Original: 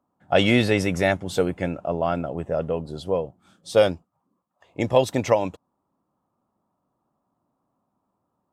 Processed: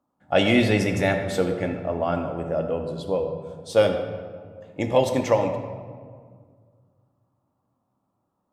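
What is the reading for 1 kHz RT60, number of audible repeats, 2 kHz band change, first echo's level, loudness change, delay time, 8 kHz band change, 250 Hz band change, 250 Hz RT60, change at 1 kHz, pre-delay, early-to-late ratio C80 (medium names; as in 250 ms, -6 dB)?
1.8 s, no echo, -0.5 dB, no echo, -0.5 dB, no echo, -1.5 dB, +0.5 dB, 2.4 s, -0.5 dB, 3 ms, 8.0 dB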